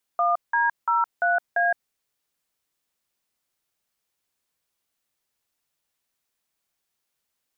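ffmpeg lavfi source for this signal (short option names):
-f lavfi -i "aevalsrc='0.0891*clip(min(mod(t,0.343),0.165-mod(t,0.343))/0.002,0,1)*(eq(floor(t/0.343),0)*(sin(2*PI*697*mod(t,0.343))+sin(2*PI*1209*mod(t,0.343)))+eq(floor(t/0.343),1)*(sin(2*PI*941*mod(t,0.343))+sin(2*PI*1633*mod(t,0.343)))+eq(floor(t/0.343),2)*(sin(2*PI*941*mod(t,0.343))+sin(2*PI*1336*mod(t,0.343)))+eq(floor(t/0.343),3)*(sin(2*PI*697*mod(t,0.343))+sin(2*PI*1477*mod(t,0.343)))+eq(floor(t/0.343),4)*(sin(2*PI*697*mod(t,0.343))+sin(2*PI*1633*mod(t,0.343))))':d=1.715:s=44100"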